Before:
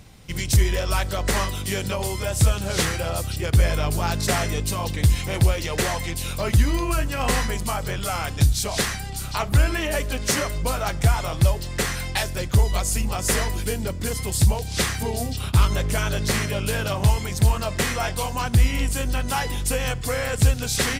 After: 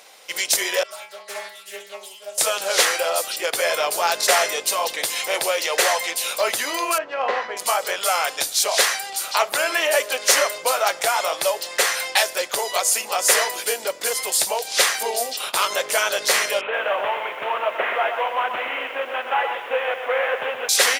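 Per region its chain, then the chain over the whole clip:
0.83–2.38 s: band-stop 5.8 kHz, Q 11 + inharmonic resonator 200 Hz, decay 0.47 s, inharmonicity 0.008 + loudspeaker Doppler distortion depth 0.26 ms
6.98–7.57 s: median filter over 5 samples + tape spacing loss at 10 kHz 33 dB
16.61–20.69 s: CVSD coder 16 kbps + bass shelf 110 Hz -8.5 dB + bit-crushed delay 124 ms, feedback 35%, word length 9-bit, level -7.5 dB
whole clip: Chebyshev high-pass 530 Hz, order 3; band-stop 8 kHz, Q 19; trim +7.5 dB

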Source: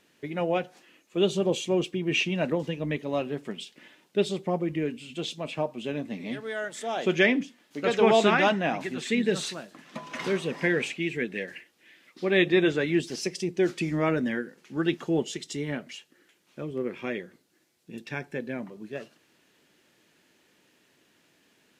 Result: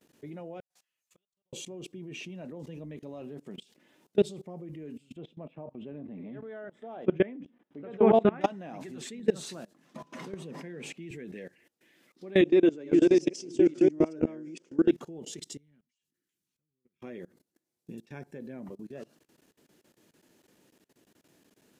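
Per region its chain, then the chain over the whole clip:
0.60–1.53 s: amplifier tone stack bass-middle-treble 10-0-10 + compression 3:1, threshold -51 dBFS + inverted gate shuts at -43 dBFS, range -36 dB
5.16–8.41 s: distance through air 480 m + band-stop 4.4 kHz, Q 6
10.04–11.11 s: high-pass 130 Hz 24 dB/octave + tone controls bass +5 dB, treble -2 dB
12.41–14.91 s: chunks repeated in reverse 443 ms, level -0.5 dB + cabinet simulation 200–7700 Hz, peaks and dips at 210 Hz -9 dB, 300 Hz +7 dB, 810 Hz -5 dB, 1.2 kHz -5 dB, 1.8 kHz -7 dB, 4 kHz -8 dB
15.57–17.02 s: amplifier tone stack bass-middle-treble 6-0-2 + compression 8:1, threshold -59 dBFS + slow attack 536 ms
whole clip: peaking EQ 2.4 kHz -10 dB 2.5 oct; level held to a coarse grid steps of 23 dB; trim +4.5 dB

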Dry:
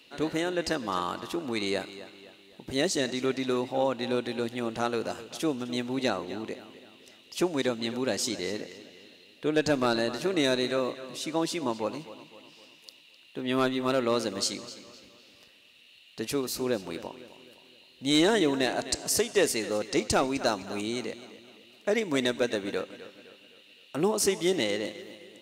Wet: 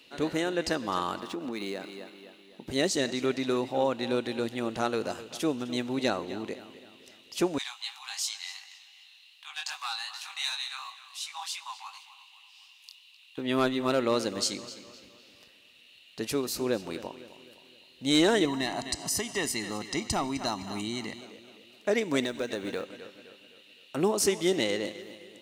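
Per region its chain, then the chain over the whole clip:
1.20–2.67 s: resonant low shelf 140 Hz -9.5 dB, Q 1.5 + compression 4:1, threshold -31 dBFS + decimation joined by straight lines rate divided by 3×
7.58–13.38 s: treble shelf 3.6 kHz +9 dB + chorus 2.7 Hz, delay 19 ms + rippled Chebyshev high-pass 760 Hz, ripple 6 dB
18.45–21.21 s: comb 1 ms, depth 73% + compression 1.5:1, threshold -33 dBFS
22.23–22.86 s: compression 2.5:1, threshold -29 dBFS + short-mantissa float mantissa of 4-bit
whole clip: none

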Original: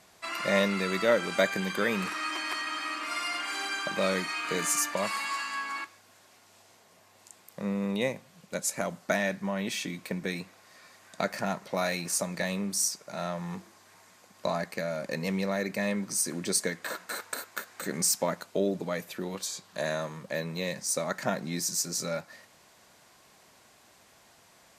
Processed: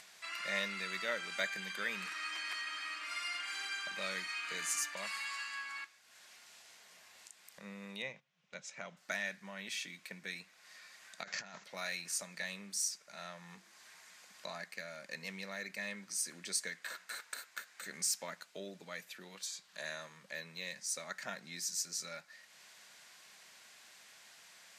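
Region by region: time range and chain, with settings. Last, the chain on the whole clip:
8.02–8.97 s: gate -48 dBFS, range -12 dB + cabinet simulation 120–5400 Hz, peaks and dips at 140 Hz +9 dB, 280 Hz -4 dB, 1.7 kHz -4 dB, 4.5 kHz -9 dB
11.23–11.64 s: treble shelf 8.4 kHz +9 dB + compressor with a negative ratio -36 dBFS + careless resampling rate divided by 3×, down none, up filtered
whole clip: frequency weighting A; upward compressor, threshold -40 dBFS; high-order bell 560 Hz -8 dB 2.5 oct; trim -7 dB

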